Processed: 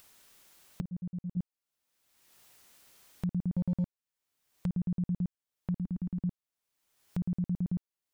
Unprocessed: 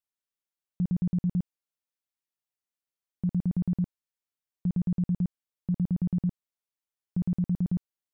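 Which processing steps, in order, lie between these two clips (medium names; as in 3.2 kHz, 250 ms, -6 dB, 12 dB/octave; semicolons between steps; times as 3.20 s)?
0.81–1.37 s: expander -19 dBFS; 5.78–6.21 s: ten-band graphic EQ 125 Hz -9 dB, 250 Hz +4 dB, 500 Hz -10 dB; upward compressor, threshold -28 dBFS; 3.53–4.66 s: waveshaping leveller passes 1; trim -4.5 dB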